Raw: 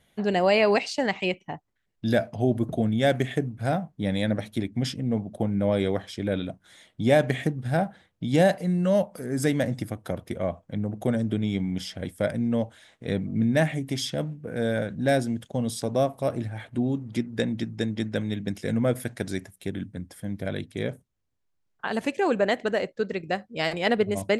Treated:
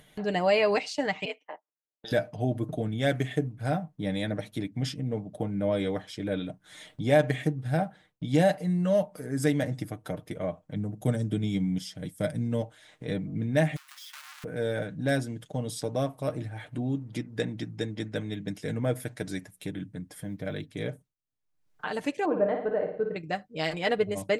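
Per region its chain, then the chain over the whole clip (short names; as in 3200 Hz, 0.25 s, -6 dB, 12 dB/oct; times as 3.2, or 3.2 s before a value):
1.25–2.12 low-pass opened by the level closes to 580 Hz, open at -23 dBFS + steep high-pass 430 Hz + ring modulator 110 Hz
10.75–12.62 HPF 180 Hz 6 dB/oct + tone controls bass +12 dB, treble +9 dB + upward expander, over -31 dBFS
13.76–14.44 half-waves squared off + inverse Chebyshev high-pass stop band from 450 Hz, stop band 50 dB + compressor 16:1, threshold -43 dBFS
20.24–20.72 bell 10000 Hz -6.5 dB 0.72 oct + short-mantissa float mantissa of 6-bit
22.25–23.16 LPF 1000 Hz + doubler 23 ms -13.5 dB + flutter echo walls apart 9.6 m, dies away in 0.59 s
whole clip: gate with hold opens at -49 dBFS; comb 6.6 ms, depth 54%; upward compressor, threshold -30 dBFS; gain -4.5 dB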